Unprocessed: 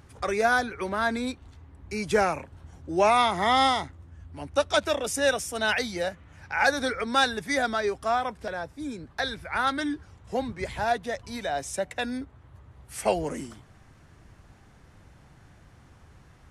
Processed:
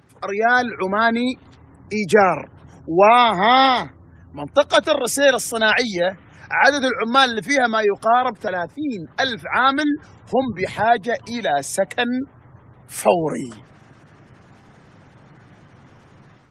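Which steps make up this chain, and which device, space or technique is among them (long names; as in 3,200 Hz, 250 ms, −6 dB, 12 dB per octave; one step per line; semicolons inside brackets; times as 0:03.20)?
noise-suppressed video call (high-pass filter 110 Hz 24 dB per octave; gate on every frequency bin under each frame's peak −30 dB strong; automatic gain control gain up to 8.5 dB; level +1.5 dB; Opus 20 kbit/s 48,000 Hz)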